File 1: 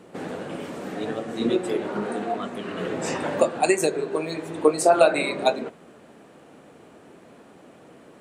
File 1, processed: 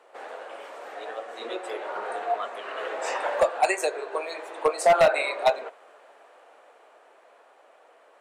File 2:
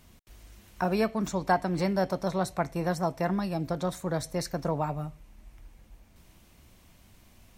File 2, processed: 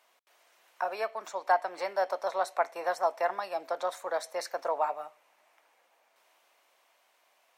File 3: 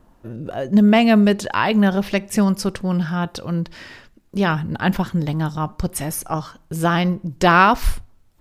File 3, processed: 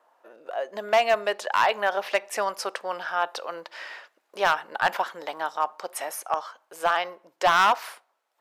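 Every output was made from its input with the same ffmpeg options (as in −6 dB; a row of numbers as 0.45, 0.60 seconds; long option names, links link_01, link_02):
-af "highpass=frequency=580:width=0.5412,highpass=frequency=580:width=1.3066,highshelf=frequency=3100:gain=-10.5,dynaudnorm=framelen=120:gausssize=31:maxgain=4.5dB,asoftclip=type=hard:threshold=-13dB"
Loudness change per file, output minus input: −1.5, −2.0, −7.0 LU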